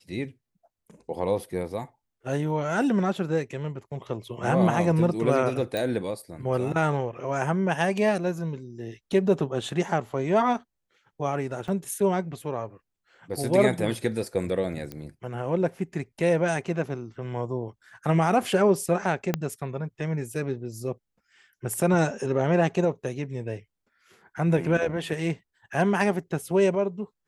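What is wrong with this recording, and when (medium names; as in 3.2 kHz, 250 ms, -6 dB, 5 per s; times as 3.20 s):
5.77 s: pop
11.68 s: dropout 4.8 ms
14.92 s: pop -21 dBFS
19.34 s: pop -10 dBFS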